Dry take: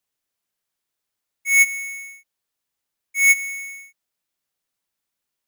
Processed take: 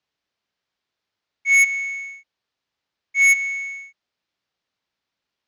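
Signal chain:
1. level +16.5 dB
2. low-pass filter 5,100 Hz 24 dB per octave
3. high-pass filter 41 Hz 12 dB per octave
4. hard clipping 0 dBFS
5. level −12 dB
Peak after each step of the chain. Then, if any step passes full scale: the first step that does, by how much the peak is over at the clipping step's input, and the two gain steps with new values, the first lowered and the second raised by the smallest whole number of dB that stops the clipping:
+6.0, +8.0, +8.0, 0.0, −12.0 dBFS
step 1, 8.0 dB
step 1 +8.5 dB, step 5 −4 dB

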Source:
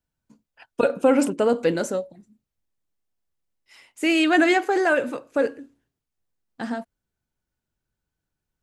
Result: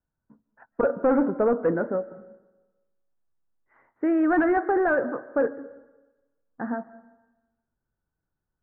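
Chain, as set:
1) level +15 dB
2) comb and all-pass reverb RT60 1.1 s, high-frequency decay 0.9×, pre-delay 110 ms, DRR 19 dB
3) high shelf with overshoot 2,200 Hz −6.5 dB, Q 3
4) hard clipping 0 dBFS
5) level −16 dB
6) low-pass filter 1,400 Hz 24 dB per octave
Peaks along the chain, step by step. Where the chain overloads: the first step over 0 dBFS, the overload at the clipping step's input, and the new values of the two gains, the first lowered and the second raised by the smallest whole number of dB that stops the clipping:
+8.0, +8.0, +9.0, 0.0, −16.0, −14.5 dBFS
step 1, 9.0 dB
step 1 +6 dB, step 5 −7 dB

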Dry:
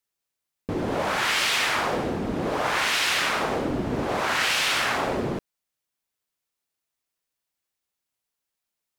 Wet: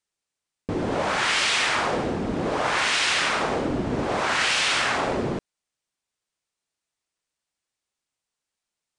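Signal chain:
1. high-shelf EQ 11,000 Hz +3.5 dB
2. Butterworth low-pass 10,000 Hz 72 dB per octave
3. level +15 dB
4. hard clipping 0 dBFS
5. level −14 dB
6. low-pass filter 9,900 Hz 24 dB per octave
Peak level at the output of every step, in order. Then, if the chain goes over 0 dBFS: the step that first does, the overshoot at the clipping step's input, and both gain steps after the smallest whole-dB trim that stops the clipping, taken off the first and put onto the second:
−10.5, −11.0, +4.0, 0.0, −14.0, −13.0 dBFS
step 3, 4.0 dB
step 3 +11 dB, step 5 −10 dB

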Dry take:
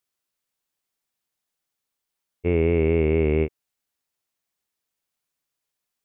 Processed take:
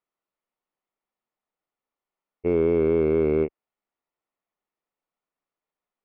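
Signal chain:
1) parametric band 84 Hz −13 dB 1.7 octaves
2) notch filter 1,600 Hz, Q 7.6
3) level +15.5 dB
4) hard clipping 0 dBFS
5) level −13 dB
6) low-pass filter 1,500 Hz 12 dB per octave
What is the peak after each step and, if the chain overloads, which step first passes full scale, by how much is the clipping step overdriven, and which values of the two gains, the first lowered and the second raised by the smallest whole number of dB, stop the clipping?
−12.0, −12.0, +3.5, 0.0, −13.0, −13.0 dBFS
step 3, 3.5 dB
step 3 +11.5 dB, step 5 −9 dB

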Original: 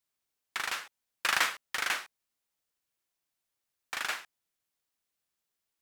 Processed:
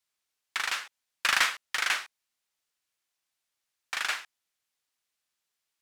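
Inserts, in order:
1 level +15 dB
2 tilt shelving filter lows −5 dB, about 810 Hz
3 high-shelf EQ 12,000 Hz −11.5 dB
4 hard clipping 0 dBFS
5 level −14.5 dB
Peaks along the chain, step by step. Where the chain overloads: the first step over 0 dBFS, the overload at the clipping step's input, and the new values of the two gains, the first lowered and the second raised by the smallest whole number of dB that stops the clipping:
+3.0, +5.5, +5.0, 0.0, −14.5 dBFS
step 1, 5.0 dB
step 1 +10 dB, step 5 −9.5 dB

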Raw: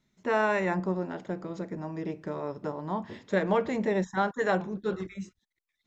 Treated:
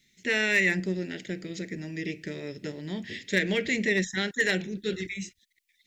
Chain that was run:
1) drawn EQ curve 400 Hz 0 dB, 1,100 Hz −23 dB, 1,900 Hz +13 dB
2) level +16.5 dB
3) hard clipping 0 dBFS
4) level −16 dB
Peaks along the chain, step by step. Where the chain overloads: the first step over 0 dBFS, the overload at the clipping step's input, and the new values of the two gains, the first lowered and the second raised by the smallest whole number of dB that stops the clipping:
−11.0, +5.5, 0.0, −16.0 dBFS
step 2, 5.5 dB
step 2 +10.5 dB, step 4 −10 dB

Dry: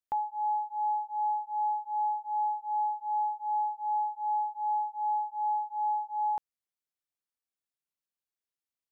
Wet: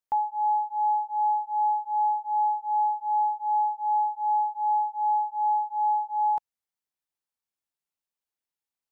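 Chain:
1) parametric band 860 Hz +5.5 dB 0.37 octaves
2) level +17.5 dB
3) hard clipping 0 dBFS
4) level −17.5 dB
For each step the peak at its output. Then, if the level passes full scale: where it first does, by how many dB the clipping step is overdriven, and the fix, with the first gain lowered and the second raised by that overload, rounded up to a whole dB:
−19.5, −2.0, −2.0, −19.5 dBFS
no step passes full scale

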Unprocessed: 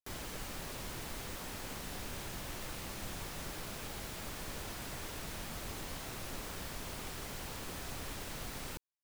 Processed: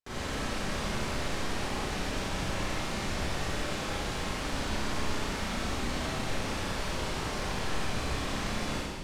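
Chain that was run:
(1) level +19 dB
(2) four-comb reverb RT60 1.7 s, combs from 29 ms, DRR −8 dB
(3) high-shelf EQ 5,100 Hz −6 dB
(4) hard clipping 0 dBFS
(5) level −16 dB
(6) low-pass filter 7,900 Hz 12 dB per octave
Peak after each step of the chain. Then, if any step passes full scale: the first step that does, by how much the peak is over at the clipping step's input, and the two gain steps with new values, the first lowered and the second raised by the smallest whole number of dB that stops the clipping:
−10.0, −1.5, −2.5, −2.5, −18.5, −19.0 dBFS
no step passes full scale

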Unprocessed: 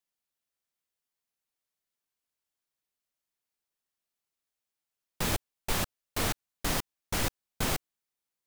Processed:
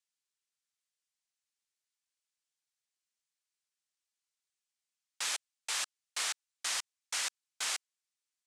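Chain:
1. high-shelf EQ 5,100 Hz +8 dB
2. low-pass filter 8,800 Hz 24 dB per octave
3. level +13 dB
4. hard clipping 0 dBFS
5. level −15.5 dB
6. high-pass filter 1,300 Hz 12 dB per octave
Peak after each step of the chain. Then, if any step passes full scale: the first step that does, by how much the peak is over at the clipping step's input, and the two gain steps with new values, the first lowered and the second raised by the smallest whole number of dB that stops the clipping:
−14.0, −15.0, −2.0, −2.0, −17.5, −21.0 dBFS
no step passes full scale

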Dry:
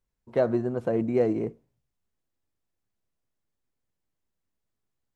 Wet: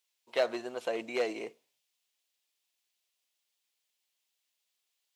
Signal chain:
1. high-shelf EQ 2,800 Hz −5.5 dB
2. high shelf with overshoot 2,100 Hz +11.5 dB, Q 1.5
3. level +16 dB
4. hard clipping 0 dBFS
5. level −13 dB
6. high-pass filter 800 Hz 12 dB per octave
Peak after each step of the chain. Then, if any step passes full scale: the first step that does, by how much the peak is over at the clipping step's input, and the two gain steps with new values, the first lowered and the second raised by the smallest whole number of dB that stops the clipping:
−11.5, −12.5, +3.5, 0.0, −13.0, −15.0 dBFS
step 3, 3.5 dB
step 3 +12 dB, step 5 −9 dB

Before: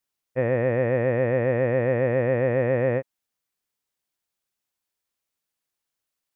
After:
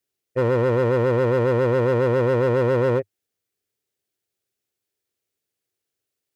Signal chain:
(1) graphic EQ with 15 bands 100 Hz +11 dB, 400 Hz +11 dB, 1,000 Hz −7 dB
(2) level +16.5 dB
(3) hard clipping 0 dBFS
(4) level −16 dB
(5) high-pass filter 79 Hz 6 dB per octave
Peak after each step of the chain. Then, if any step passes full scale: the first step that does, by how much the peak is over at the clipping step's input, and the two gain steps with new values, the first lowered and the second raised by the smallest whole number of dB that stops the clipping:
−8.0, +8.5, 0.0, −16.0, −12.5 dBFS
step 2, 8.5 dB
step 2 +7.5 dB, step 4 −7 dB

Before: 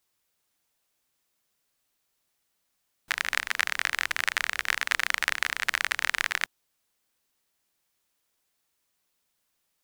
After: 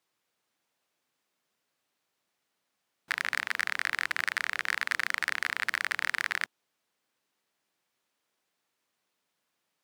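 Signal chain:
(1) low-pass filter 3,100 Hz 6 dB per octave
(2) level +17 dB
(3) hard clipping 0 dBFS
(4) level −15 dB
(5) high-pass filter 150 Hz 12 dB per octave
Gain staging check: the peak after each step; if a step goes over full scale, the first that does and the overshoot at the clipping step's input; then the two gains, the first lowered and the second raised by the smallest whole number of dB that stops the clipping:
−7.0, +10.0, 0.0, −15.0, −13.5 dBFS
step 2, 10.0 dB
step 2 +7 dB, step 4 −5 dB

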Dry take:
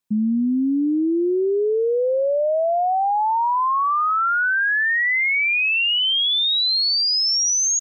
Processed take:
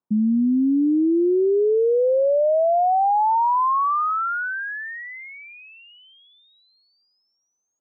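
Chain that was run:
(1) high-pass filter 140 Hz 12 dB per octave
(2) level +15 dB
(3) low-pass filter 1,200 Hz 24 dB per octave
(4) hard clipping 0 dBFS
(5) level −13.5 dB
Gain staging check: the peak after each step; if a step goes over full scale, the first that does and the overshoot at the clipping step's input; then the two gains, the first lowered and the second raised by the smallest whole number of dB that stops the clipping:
−16.5, −1.5, −1.5, −1.5, −15.0 dBFS
no step passes full scale

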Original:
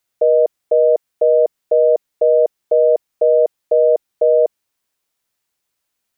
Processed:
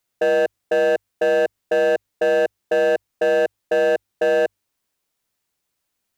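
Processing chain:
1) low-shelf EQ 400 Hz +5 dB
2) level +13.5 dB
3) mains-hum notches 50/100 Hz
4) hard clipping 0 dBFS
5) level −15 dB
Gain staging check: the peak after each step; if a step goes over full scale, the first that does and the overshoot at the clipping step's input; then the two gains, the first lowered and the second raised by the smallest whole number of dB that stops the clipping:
−4.0, +9.5, +9.5, 0.0, −15.0 dBFS
step 2, 9.5 dB
step 2 +3.5 dB, step 5 −5 dB

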